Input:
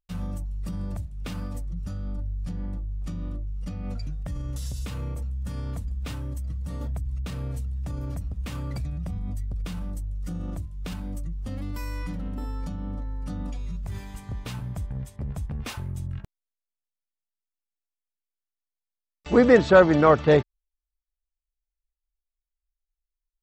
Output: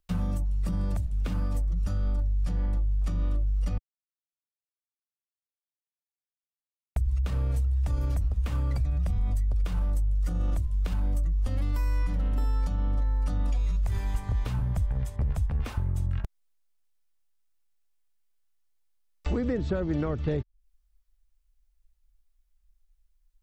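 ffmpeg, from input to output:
-filter_complex "[0:a]asplit=3[a][b][c];[a]atrim=end=3.78,asetpts=PTS-STARTPTS,afade=t=out:st=3.776:d=0.004:c=hsin[d];[b]atrim=start=3.78:end=6.96,asetpts=PTS-STARTPTS,volume=0[e];[c]atrim=start=6.96,asetpts=PTS-STARTPTS,afade=t=in:d=0.004:c=hsin[f];[d][e][f]concat=n=3:v=0:a=1,acompressor=threshold=-31dB:ratio=2,asubboost=boost=4:cutoff=79,acrossover=split=360|1700[g][h][i];[g]acompressor=threshold=-33dB:ratio=4[j];[h]acompressor=threshold=-51dB:ratio=4[k];[i]acompressor=threshold=-59dB:ratio=4[l];[j][k][l]amix=inputs=3:normalize=0,volume=8dB"

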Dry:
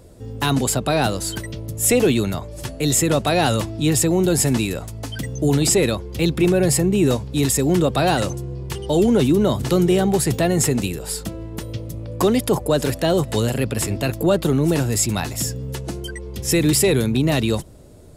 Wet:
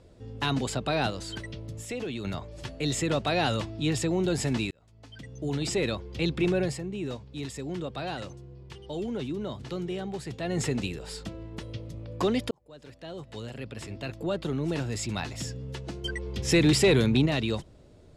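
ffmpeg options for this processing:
-filter_complex "[0:a]asettb=1/sr,asplit=3[a][b][c];[a]atrim=end=1.104[d];[b]atrim=start=1.1:end=2.25,asetpts=PTS-STARTPTS,afade=t=in:d=0.004:c=qsin,afade=t=out:st=1.146:d=0.004:c=qsin,acompressor=threshold=-22dB:ratio=6:attack=3.2:release=140:knee=1:detection=peak[e];[c]atrim=start=2.246[f];[d][e]acrossfade=d=0.004:c1=hsin:c2=qsin[g];[g][f]acrossfade=d=0.004:c1=qsin:c2=hsin,asettb=1/sr,asplit=3[h][i][j];[h]atrim=end=16.044[k];[i]atrim=start=16.04:end=17.26,asetpts=PTS-STARTPTS,afade=t=in:d=0.004:c=qsin,afade=t=out:st=1.216:d=0.004:c=qsin,acontrast=52[l];[j]atrim=start=17.256[m];[k][l]acrossfade=d=0.004:c1=hsin:c2=qsin[n];[n][m]acrossfade=d=0.004:c1=qsin:c2=hsin,asplit=5[o][p][q][r][s];[o]atrim=end=4.71,asetpts=PTS-STARTPTS,afade=t=out:st=4.706:d=0.004:c=hsin[t];[p]atrim=start=4.71:end=6.78,asetpts=PTS-STARTPTS,afade=t=in:d=1.28,afade=t=out:st=1.88:d=0.19:silence=0.398107[u];[q]atrim=start=6.78:end=10.4,asetpts=PTS-STARTPTS,volume=-8dB[v];[r]atrim=start=10.4:end=12.51,asetpts=PTS-STARTPTS,afade=t=in:d=0.19:silence=0.398107,afade=t=out:st=2.106:d=0.004:c=hsin[w];[s]atrim=start=12.51,asetpts=PTS-STARTPTS,afade=t=in:d=2.89[x];[t][u][v][w][x]concat=n=5:v=0:a=1,lowpass=3.5k,highshelf=f=2.7k:g=9.5,volume=-9dB"

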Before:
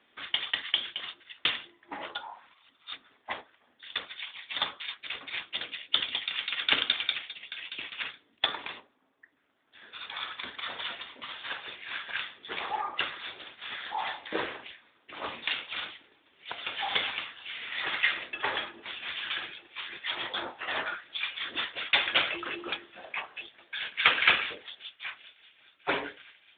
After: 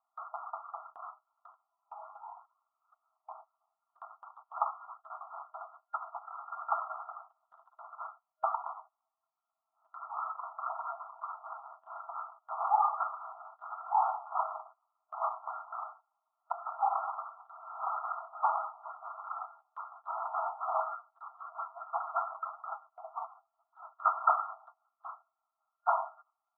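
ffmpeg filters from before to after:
-filter_complex "[0:a]asettb=1/sr,asplit=3[a][b][c];[a]atrim=end=1.384[d];[b]atrim=start=1.38:end=4.02,asetpts=PTS-STARTPTS,afade=t=in:d=0.004:c=qsin,afade=t=out:st=2.636:d=0.004:c=qsin,acompressor=threshold=-57dB:ratio=2:attack=3.2:release=140:knee=1:detection=peak[e];[c]atrim=start=4.016[f];[d][e]acrossfade=d=0.004:c1=hsin:c2=qsin[g];[g][f]acrossfade=d=0.004:c1=qsin:c2=hsin,asettb=1/sr,asplit=3[h][i][j];[h]atrim=end=11.364[k];[i]atrim=start=11.36:end=12.04,asetpts=PTS-STARTPTS,afade=t=in:d=0.004:c=qsin,afade=t=out:st=0.676:d=0.004:c=qsin,aeval=exprs='max(val(0),0)':c=same[l];[j]atrim=start=12.036[m];[k][l]acrossfade=d=0.004:c1=hsin:c2=qsin[n];[n][m]acrossfade=d=0.004:c1=qsin:c2=hsin,asettb=1/sr,asplit=3[o][p][q];[o]atrim=end=20.844[r];[p]atrim=start=20.84:end=24.24,asetpts=PTS-STARTPTS,afade=t=in:d=0.004:c=qsin,afade=t=out:st=3.396:d=0.004:c=qsin,flanger=delay=5.3:depth=5.3:regen=42:speed=1.7:shape=sinusoidal[s];[q]atrim=start=24.236[t];[r][s]acrossfade=d=0.004:c1=hsin:c2=qsin[u];[u][t]acrossfade=d=0.004:c1=qsin:c2=hsin,afftfilt=real='re*between(b*sr/4096,630,1400)':imag='im*between(b*sr/4096,630,1400)':win_size=4096:overlap=0.75,agate=range=-17dB:threshold=-59dB:ratio=16:detection=peak,volume=6.5dB"

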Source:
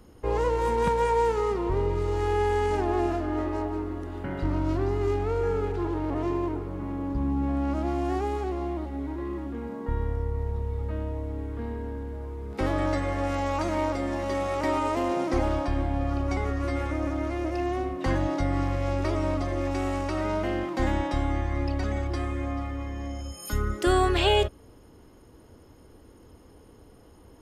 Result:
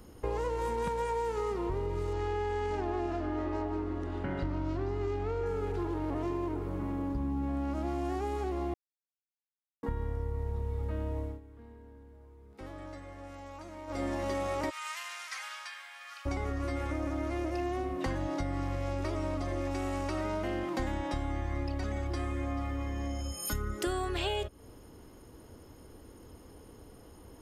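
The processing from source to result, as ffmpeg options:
-filter_complex "[0:a]asettb=1/sr,asplit=3[a][b][c];[a]atrim=end=2.134[d];[b]atrim=start=2.13:end=5.46,asetpts=PTS-STARTPTS,afade=t=in:d=0.004:c=qsin,afade=t=out:st=3.326:d=0.004:c=qsin,lowpass=5.7k[e];[c]atrim=start=5.456[f];[d][e]acrossfade=d=0.004:c1=hsin:c2=qsin[g];[g][f]acrossfade=d=0.004:c1=qsin:c2=hsin,asplit=3[h][i][j];[h]afade=t=out:st=14.69:d=0.02[k];[i]highpass=f=1.5k:w=0.5412,highpass=f=1.5k:w=1.3066,afade=t=in:st=14.69:d=0.02,afade=t=out:st=16.25:d=0.02[l];[j]afade=t=in:st=16.25:d=0.02[m];[k][l][m]amix=inputs=3:normalize=0,asplit=5[n][o][p][q][r];[n]atrim=end=8.74,asetpts=PTS-STARTPTS,afade=t=out:st=8.736:d=0.004:c=hsin[s];[o]atrim=start=8.74:end=9.83,asetpts=PTS-STARTPTS,volume=0[t];[p]atrim=start=9.83:end=11.4,asetpts=PTS-STARTPTS,afade=t=in:d=0.004:c=hsin,afade=t=out:st=1.37:d=0.2:silence=0.11885[u];[q]atrim=start=11.4:end=13.87,asetpts=PTS-STARTPTS,volume=-18.5dB[v];[r]atrim=start=13.87,asetpts=PTS-STARTPTS,afade=t=in:d=0.2:silence=0.11885[w];[s][t][u][v][w]concat=n=5:v=0:a=1,highshelf=f=7.4k:g=6,acompressor=threshold=-30dB:ratio=6"

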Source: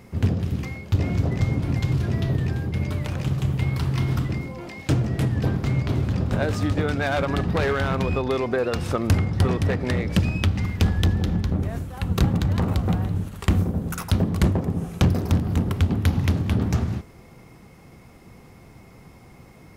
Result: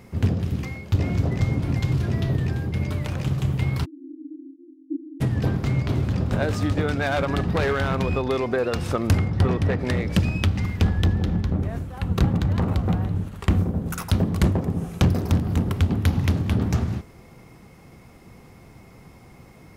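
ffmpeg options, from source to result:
-filter_complex "[0:a]asplit=3[a][b][c];[a]afade=t=out:st=3.84:d=0.02[d];[b]asuperpass=centerf=300:order=12:qfactor=4.1,afade=t=in:st=3.84:d=0.02,afade=t=out:st=5.2:d=0.02[e];[c]afade=t=in:st=5.2:d=0.02[f];[d][e][f]amix=inputs=3:normalize=0,asettb=1/sr,asplit=3[g][h][i];[g]atrim=end=9.284[j];[h]atrim=start=9.28:end=9.79,asetpts=PTS-STARTPTS,afade=t=in:d=0.004:c=qsin,afade=t=out:st=0.506:d=0.004:c=qsin,aemphasis=mode=reproduction:type=cd[k];[i]atrim=start=9.786[l];[j][k]acrossfade=d=0.004:c1=hsin:c2=qsin[m];[m][l]acrossfade=d=0.004:c1=qsin:c2=hsin,asettb=1/sr,asplit=3[n][o][p];[n]atrim=end=10.804[q];[o]atrim=start=10.8:end=13.86,asetpts=PTS-STARTPTS,afade=t=in:d=0.004:c=qsin,afade=t=out:st=3.056:d=0.004:c=qsin,highshelf=f=4.3k:g=-7[r];[p]atrim=start=13.856[s];[q][r]acrossfade=d=0.004:c1=hsin:c2=qsin[t];[t][s]acrossfade=d=0.004:c1=qsin:c2=hsin"

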